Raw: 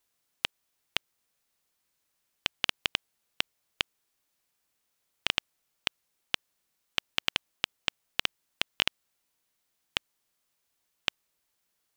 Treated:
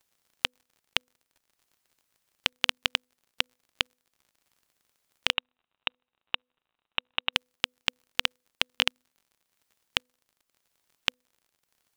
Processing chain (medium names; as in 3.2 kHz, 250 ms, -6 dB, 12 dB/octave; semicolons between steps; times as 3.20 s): de-hum 249.6 Hz, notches 2; harmonic-percussive split percussive +7 dB; transient shaper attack -1 dB, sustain -5 dB; crackle 50 per s -47 dBFS; 5.33–7.33 s: rippled Chebyshev low-pass 3.9 kHz, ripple 6 dB; trim -3 dB